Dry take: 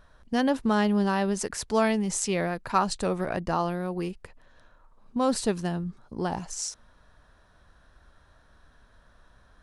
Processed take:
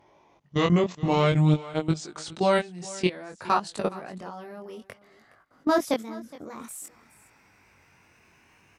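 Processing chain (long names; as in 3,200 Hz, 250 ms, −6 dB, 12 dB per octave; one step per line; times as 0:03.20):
gliding playback speed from 58% → 161%
high-pass filter 150 Hz 12 dB per octave
in parallel at +1 dB: brickwall limiter −20 dBFS, peak gain reduction 10.5 dB
on the sum: output level in coarse steps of 20 dB
dynamic equaliser 3,500 Hz, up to +5 dB, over −47 dBFS, Q 1.6
chorus effect 0.55 Hz, delay 19 ms, depth 4.1 ms
on a send: single-tap delay 417 ms −19.5 dB
on the sum: level +3 dB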